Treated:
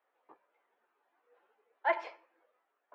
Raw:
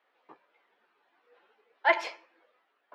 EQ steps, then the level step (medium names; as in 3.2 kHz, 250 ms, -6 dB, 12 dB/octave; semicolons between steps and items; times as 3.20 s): band-pass filter 670 Hz, Q 0.56; -4.5 dB